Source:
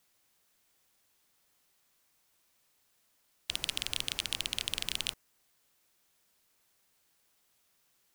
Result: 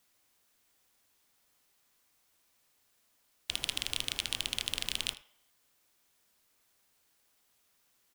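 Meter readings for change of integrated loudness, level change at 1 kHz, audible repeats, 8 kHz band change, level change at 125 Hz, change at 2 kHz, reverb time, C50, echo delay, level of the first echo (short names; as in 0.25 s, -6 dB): 0.0 dB, +0.5 dB, 1, 0.0 dB, 0.0 dB, 0.0 dB, 0.60 s, 13.5 dB, 79 ms, -18.0 dB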